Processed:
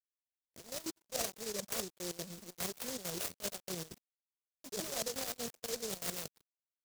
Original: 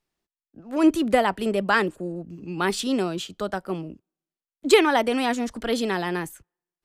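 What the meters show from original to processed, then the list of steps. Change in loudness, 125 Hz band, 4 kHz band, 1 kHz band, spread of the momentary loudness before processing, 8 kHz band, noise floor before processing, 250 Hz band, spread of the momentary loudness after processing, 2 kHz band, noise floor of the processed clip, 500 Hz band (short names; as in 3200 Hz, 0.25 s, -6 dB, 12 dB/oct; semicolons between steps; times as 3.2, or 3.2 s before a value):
-16.0 dB, -15.5 dB, -11.0 dB, -23.5 dB, 15 LU, -1.5 dB, under -85 dBFS, -23.5 dB, 8 LU, -21.5 dB, under -85 dBFS, -19.5 dB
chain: LPC vocoder at 8 kHz pitch kept; step gate "x..xx.xxxx." 192 bpm -12 dB; dynamic EQ 580 Hz, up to -6 dB, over -40 dBFS, Q 2.3; in parallel at -7 dB: sample-and-hold 34×; on the sum: HPF 160 Hz 12 dB/oct; treble ducked by the level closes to 770 Hz, closed at -21.5 dBFS; comb 1.7 ms, depth 85%; reverse; compressor 12:1, threshold -35 dBFS, peak gain reduction 21.5 dB; reverse; crossover distortion -52.5 dBFS; low shelf 310 Hz -11 dB; noise-modulated delay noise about 5700 Hz, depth 0.27 ms; gain +3.5 dB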